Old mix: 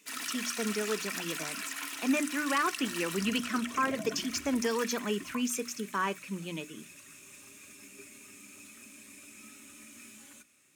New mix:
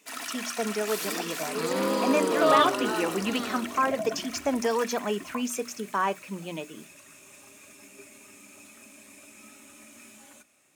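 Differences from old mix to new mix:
second sound: unmuted
master: add parametric band 710 Hz +12.5 dB 0.96 octaves

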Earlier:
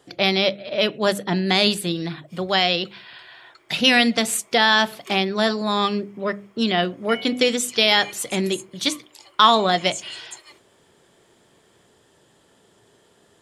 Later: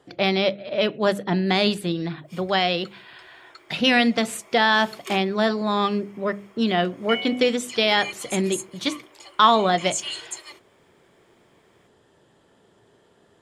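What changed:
speech: add high-shelf EQ 3,700 Hz −11 dB
background +5.0 dB

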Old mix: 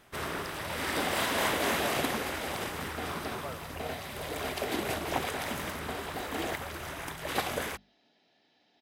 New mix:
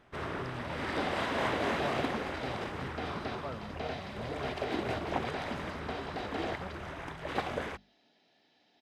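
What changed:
speech: remove linear-phase brick-wall high-pass 390 Hz
first sound: add head-to-tape spacing loss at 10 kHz 21 dB

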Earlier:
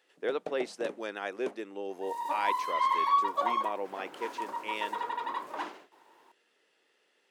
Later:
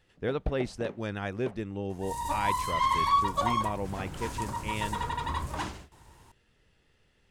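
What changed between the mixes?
first sound: add band-pass filter 380–4,100 Hz
second sound: add parametric band 8,400 Hz +14.5 dB 1.9 octaves
master: remove high-pass filter 330 Hz 24 dB per octave

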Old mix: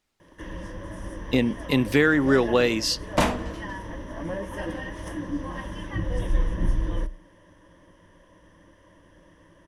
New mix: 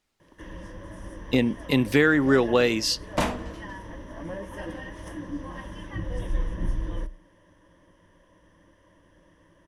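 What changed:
first sound −4.0 dB
second sound −3.5 dB

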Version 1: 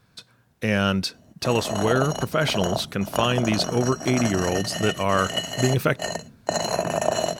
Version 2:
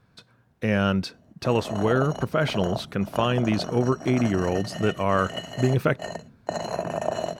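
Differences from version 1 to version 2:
background −3.5 dB
master: add high-shelf EQ 3,100 Hz −11.5 dB

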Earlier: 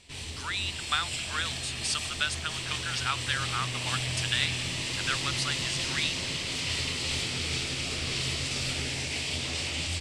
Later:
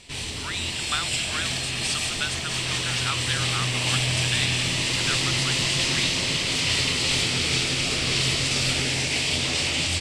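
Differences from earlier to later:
first sound +8.0 dB
second sound +8.5 dB
master: add parametric band 77 Hz −10.5 dB 0.21 octaves

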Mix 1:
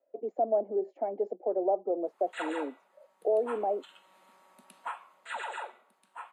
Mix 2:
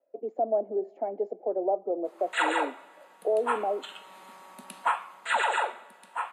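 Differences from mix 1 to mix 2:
background +10.5 dB
reverb: on

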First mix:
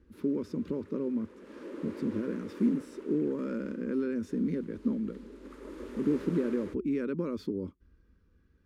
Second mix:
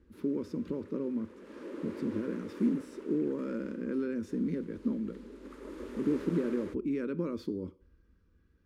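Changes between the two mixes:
speech −3.5 dB
reverb: on, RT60 0.55 s

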